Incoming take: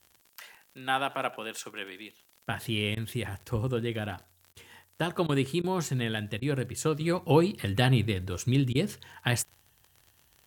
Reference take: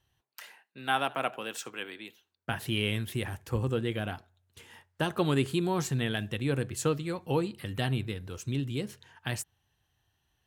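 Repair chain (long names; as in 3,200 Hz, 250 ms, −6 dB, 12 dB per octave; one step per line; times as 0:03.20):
click removal
repair the gap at 0:02.95/0:04.53/0:05.27/0:05.62/0:06.40/0:08.73, 18 ms
downward expander −57 dBFS, range −21 dB
level 0 dB, from 0:07.01 −6.5 dB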